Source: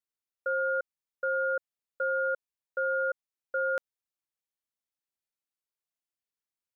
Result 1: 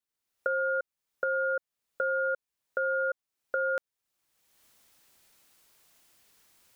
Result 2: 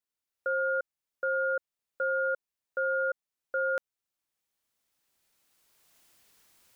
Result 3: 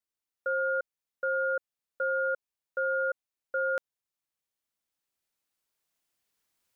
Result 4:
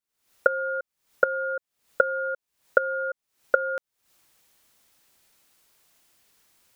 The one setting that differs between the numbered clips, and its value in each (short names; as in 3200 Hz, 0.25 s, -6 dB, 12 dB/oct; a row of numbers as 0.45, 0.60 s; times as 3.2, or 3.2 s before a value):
recorder AGC, rising by: 34, 13, 5.2, 88 dB/s